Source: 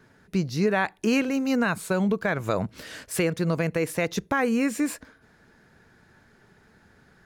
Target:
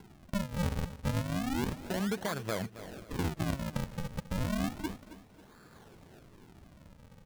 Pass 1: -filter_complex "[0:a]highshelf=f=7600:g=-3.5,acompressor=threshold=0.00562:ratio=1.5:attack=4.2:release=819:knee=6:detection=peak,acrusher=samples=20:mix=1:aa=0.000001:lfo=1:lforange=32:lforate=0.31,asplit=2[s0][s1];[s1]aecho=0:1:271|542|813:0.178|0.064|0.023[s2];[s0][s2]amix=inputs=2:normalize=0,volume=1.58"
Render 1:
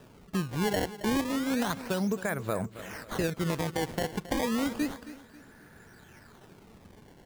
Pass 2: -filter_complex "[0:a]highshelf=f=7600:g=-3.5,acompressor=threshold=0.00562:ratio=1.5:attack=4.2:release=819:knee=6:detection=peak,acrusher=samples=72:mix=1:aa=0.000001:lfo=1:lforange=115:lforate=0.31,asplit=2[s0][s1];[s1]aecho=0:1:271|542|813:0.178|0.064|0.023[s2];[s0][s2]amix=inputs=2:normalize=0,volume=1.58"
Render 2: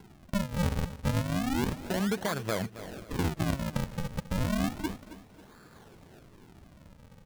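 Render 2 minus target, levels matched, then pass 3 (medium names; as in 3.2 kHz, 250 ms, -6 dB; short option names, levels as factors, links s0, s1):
compression: peak gain reduction -3.5 dB
-filter_complex "[0:a]highshelf=f=7600:g=-3.5,acompressor=threshold=0.00178:ratio=1.5:attack=4.2:release=819:knee=6:detection=peak,acrusher=samples=72:mix=1:aa=0.000001:lfo=1:lforange=115:lforate=0.31,asplit=2[s0][s1];[s1]aecho=0:1:271|542|813:0.178|0.064|0.023[s2];[s0][s2]amix=inputs=2:normalize=0,volume=1.58"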